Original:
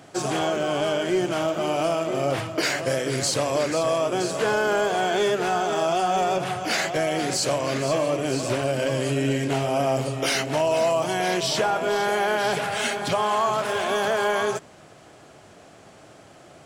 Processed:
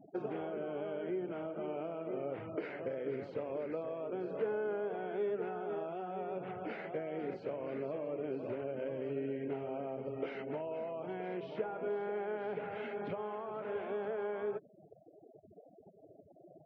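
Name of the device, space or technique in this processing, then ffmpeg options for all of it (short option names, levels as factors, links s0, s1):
bass amplifier: -af "afftfilt=real='re*gte(hypot(re,im),0.0158)':imag='im*gte(hypot(re,im),0.0158)':win_size=1024:overlap=0.75,acompressor=threshold=0.0251:ratio=6,highpass=85,equalizer=f=130:t=q:w=4:g=-7,equalizer=f=200:t=q:w=4:g=4,equalizer=f=440:t=q:w=4:g=8,equalizer=f=710:t=q:w=4:g=-4,equalizer=f=1100:t=q:w=4:g=-8,equalizer=f=1700:t=q:w=4:g=-7,lowpass=f=2100:w=0.5412,lowpass=f=2100:w=1.3066,volume=0.562"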